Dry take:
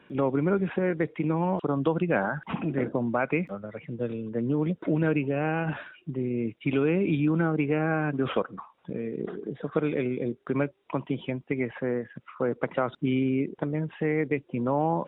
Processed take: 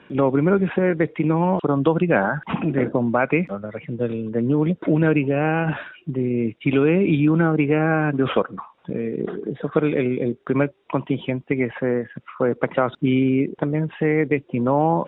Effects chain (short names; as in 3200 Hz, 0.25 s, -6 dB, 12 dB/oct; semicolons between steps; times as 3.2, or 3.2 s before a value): LPF 6800 Hz; gain +7 dB